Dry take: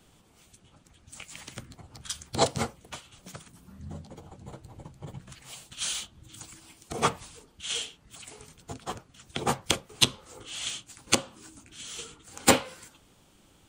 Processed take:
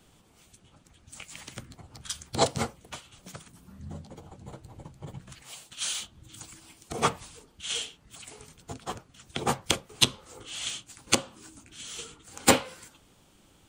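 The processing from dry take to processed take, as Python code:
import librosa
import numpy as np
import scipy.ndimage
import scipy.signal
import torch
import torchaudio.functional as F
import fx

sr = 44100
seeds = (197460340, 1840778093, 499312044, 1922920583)

y = fx.low_shelf(x, sr, hz=180.0, db=-9.5, at=(5.43, 6.0))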